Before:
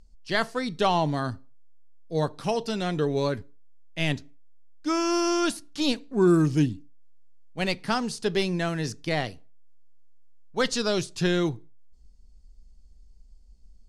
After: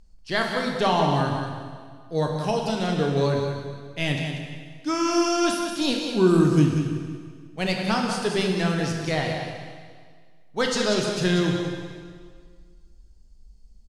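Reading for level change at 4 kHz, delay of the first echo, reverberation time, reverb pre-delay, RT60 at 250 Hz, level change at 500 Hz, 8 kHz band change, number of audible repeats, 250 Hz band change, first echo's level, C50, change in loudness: +3.0 dB, 0.188 s, 1.8 s, 7 ms, 1.9 s, +3.0 dB, +3.0 dB, 1, +3.0 dB, -7.5 dB, 1.5 dB, +2.5 dB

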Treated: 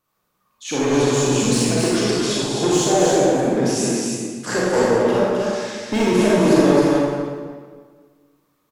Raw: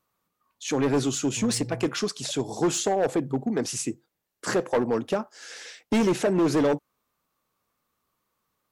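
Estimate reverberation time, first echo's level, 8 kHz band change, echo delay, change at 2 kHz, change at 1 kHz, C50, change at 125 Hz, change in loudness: 1.6 s, -3.0 dB, +7.5 dB, 0.262 s, +8.5 dB, +8.5 dB, -6.0 dB, +9.0 dB, +7.5 dB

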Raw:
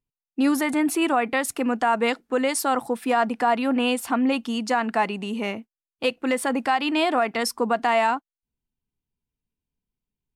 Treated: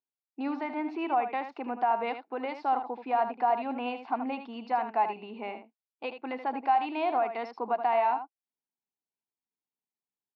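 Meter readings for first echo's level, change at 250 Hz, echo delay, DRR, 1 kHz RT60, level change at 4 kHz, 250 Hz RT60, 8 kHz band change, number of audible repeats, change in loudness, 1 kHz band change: -9.5 dB, -13.0 dB, 78 ms, none, none, -17.0 dB, none, under -40 dB, 1, -7.5 dB, -3.0 dB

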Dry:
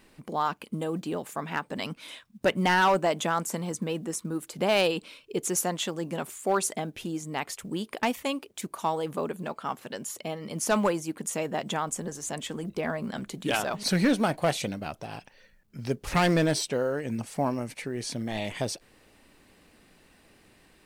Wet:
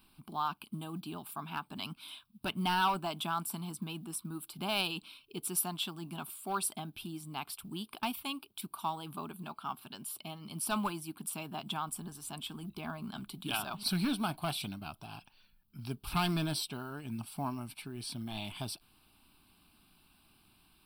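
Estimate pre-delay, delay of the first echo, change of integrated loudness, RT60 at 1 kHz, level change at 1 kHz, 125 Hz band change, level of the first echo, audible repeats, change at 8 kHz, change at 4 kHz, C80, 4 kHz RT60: none, none, -8.0 dB, none, -7.0 dB, -6.5 dB, none, none, -7.0 dB, -3.5 dB, none, none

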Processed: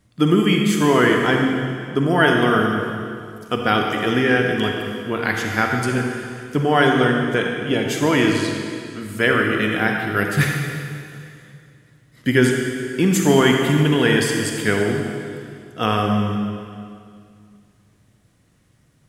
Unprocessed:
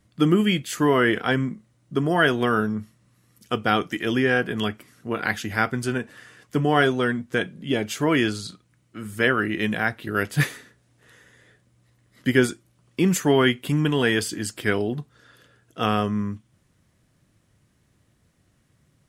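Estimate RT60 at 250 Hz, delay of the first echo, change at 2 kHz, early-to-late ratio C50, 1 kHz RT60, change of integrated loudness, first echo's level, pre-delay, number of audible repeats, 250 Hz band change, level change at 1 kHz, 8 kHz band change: 2.7 s, none, +4.5 dB, 2.0 dB, 2.2 s, +4.5 dB, none, 38 ms, none, +5.0 dB, +5.0 dB, +5.0 dB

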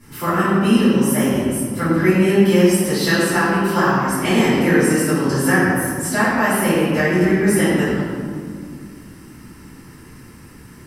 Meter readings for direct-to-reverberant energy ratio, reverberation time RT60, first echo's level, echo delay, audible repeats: -14.5 dB, 2.1 s, none, none, none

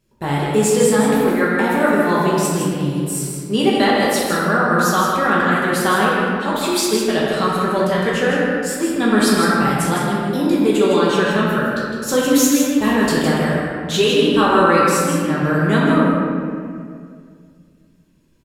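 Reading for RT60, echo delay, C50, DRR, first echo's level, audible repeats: 2.1 s, 0.159 s, -3.0 dB, -7.0 dB, -4.5 dB, 1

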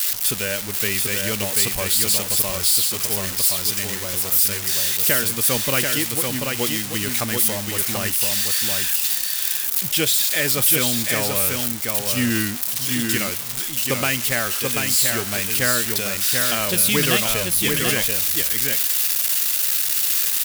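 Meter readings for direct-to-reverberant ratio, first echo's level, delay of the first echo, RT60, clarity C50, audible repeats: none, -4.0 dB, 0.736 s, none, none, 1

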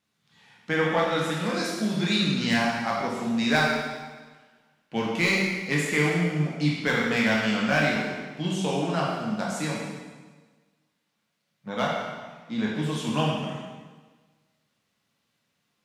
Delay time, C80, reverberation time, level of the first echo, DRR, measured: none, 2.5 dB, 1.4 s, none, -4.5 dB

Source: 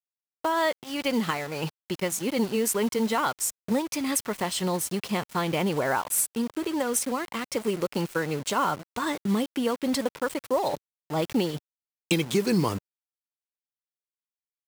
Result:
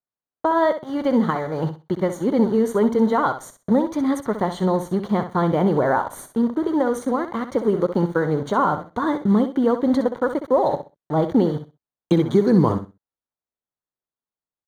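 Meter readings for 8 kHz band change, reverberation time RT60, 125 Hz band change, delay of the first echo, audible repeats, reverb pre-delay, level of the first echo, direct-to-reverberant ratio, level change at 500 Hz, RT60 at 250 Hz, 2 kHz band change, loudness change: -14.0 dB, none, +8.5 dB, 64 ms, 2, none, -10.0 dB, none, +8.0 dB, none, +0.5 dB, +6.5 dB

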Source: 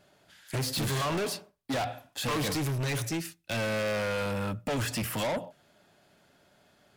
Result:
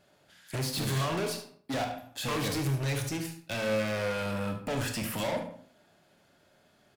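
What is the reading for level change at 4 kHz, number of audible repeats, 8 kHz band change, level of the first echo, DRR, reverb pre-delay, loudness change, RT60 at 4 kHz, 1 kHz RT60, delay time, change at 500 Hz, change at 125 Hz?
-1.5 dB, 1, -1.5 dB, -13.0 dB, 5.0 dB, 23 ms, -1.0 dB, 0.40 s, 0.50 s, 74 ms, -0.5 dB, 0.0 dB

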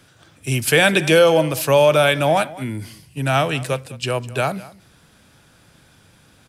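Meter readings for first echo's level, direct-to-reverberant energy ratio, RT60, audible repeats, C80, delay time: -19.5 dB, none, none, 1, none, 0.204 s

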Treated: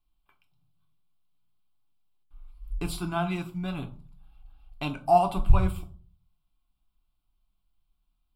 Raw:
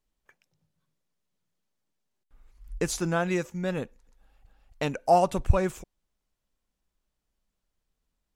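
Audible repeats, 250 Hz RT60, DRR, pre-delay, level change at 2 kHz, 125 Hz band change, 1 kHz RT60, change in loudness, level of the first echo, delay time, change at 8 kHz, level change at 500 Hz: none, 0.55 s, 4.0 dB, 3 ms, -4.5 dB, +1.5 dB, 0.40 s, -0.5 dB, none, none, -9.5 dB, -3.0 dB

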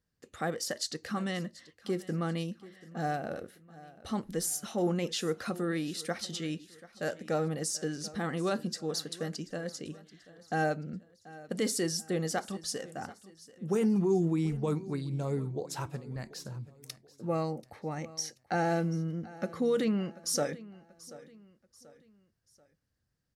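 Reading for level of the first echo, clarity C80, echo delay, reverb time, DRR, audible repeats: -19.0 dB, none, 0.735 s, none, none, 3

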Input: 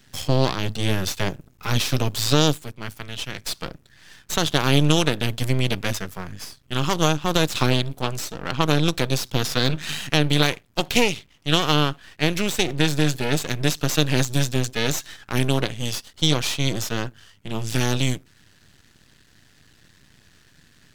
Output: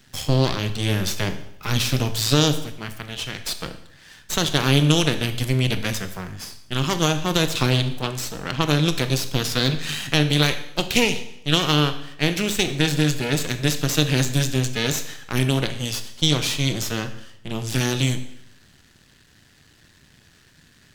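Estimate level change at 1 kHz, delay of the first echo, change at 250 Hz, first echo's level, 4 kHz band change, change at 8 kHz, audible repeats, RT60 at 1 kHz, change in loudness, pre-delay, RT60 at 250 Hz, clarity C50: -1.5 dB, none, +1.0 dB, none, +1.0 dB, +1.5 dB, none, 0.75 s, +1.0 dB, 24 ms, 0.80 s, 11.5 dB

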